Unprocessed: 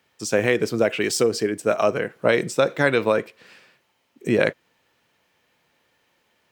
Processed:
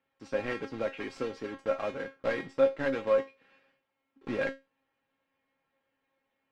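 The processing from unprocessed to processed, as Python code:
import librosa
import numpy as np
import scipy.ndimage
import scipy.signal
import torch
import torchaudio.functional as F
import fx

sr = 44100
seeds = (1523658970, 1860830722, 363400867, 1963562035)

y = fx.block_float(x, sr, bits=3)
y = scipy.signal.sosfilt(scipy.signal.butter(2, 2300.0, 'lowpass', fs=sr, output='sos'), y)
y = fx.comb_fb(y, sr, f0_hz=270.0, decay_s=0.23, harmonics='all', damping=0.0, mix_pct=90)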